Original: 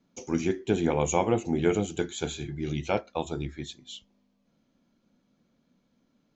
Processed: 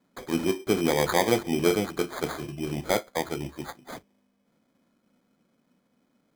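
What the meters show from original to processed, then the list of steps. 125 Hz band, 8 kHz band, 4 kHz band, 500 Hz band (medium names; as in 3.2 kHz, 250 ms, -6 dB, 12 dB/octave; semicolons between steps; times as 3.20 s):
-2.5 dB, no reading, +5.5 dB, +2.0 dB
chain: high-pass 220 Hz 6 dB/octave; sample-and-hold 16×; trim +3 dB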